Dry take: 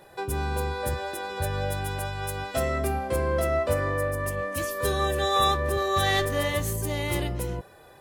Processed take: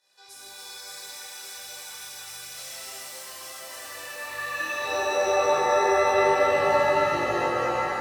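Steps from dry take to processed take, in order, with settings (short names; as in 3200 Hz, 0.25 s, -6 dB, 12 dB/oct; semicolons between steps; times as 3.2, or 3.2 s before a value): band-pass sweep 5600 Hz -> 520 Hz, 3.74–5.07; chorus voices 4, 1 Hz, delay 22 ms, depth 3.3 ms; shimmer reverb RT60 3.9 s, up +7 st, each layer -2 dB, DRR -10 dB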